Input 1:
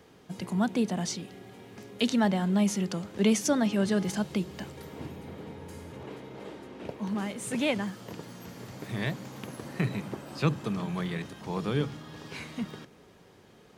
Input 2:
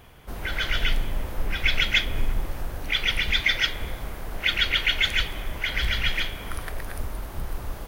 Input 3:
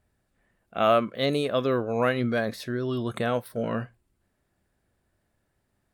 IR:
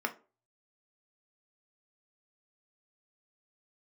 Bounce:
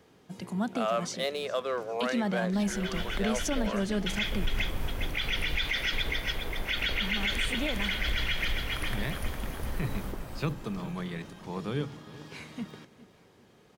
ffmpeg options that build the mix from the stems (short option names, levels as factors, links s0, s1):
-filter_complex "[0:a]volume=0.668,asplit=2[s0][s1];[s1]volume=0.119[s2];[1:a]adelay=2250,volume=0.631,asplit=3[s3][s4][s5];[s3]atrim=end=3.26,asetpts=PTS-STARTPTS,afade=t=out:st=3.256:d=0.004:c=hsin[s6];[s4]atrim=start=3.26:end=4.06,asetpts=PTS-STARTPTS,volume=0[s7];[s5]atrim=start=4.06,asetpts=PTS-STARTPTS,afade=t=in:d=0.004:c=hsin[s8];[s6][s7][s8]concat=n=3:v=0:a=1,asplit=2[s9][s10];[s10]volume=0.531[s11];[2:a]highpass=f=480:w=0.5412,highpass=f=480:w=1.3066,adynamicsmooth=sensitivity=7.5:basefreq=3200,volume=0.75,asplit=2[s12][s13];[s13]apad=whole_len=446598[s14];[s9][s14]sidechaincompress=threshold=0.00562:ratio=4:attack=7.2:release=411[s15];[s2][s11]amix=inputs=2:normalize=0,aecho=0:1:408|816|1224|1632|2040:1|0.37|0.137|0.0507|0.0187[s16];[s0][s15][s12][s16]amix=inputs=4:normalize=0,alimiter=limit=0.106:level=0:latency=1:release=40"